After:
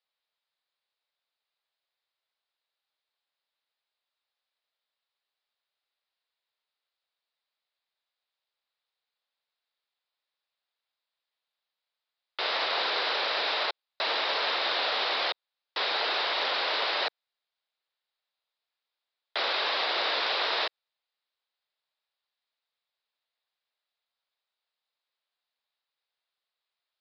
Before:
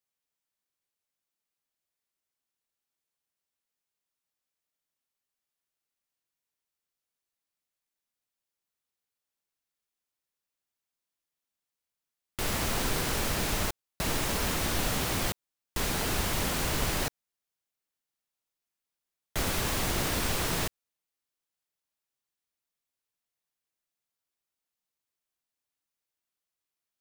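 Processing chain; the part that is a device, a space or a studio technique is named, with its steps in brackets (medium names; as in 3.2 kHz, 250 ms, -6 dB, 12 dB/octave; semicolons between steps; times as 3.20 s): resonant high shelf 7.1 kHz +7.5 dB, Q 1.5; musical greeting card (resampled via 11.025 kHz; high-pass 500 Hz 24 dB/octave; peaking EQ 3.8 kHz +7.5 dB 0.34 oct); trim +5 dB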